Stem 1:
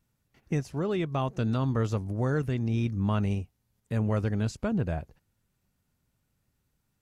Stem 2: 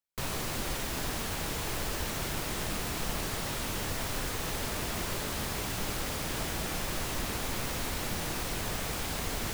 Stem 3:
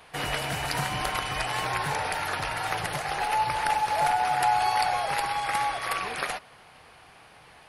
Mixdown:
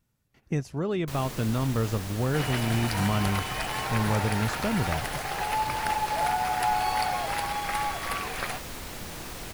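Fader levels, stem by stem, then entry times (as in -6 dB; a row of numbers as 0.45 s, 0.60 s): +0.5 dB, -4.5 dB, -2.5 dB; 0.00 s, 0.90 s, 2.20 s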